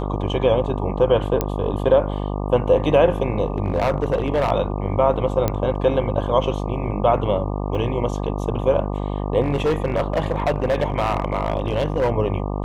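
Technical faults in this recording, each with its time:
buzz 50 Hz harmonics 24 -25 dBFS
1.41 pop -7 dBFS
3.58–4.52 clipped -14.5 dBFS
5.48 pop -7 dBFS
7.75 gap 2.5 ms
9.41–12.1 clipped -15 dBFS

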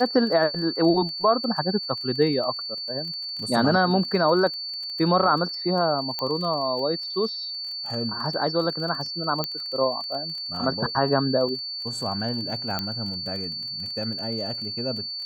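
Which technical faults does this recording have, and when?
crackle 20/s -32 dBFS
tone 4500 Hz -30 dBFS
6.19 pop -14 dBFS
9.44 pop -11 dBFS
12.79 pop -11 dBFS

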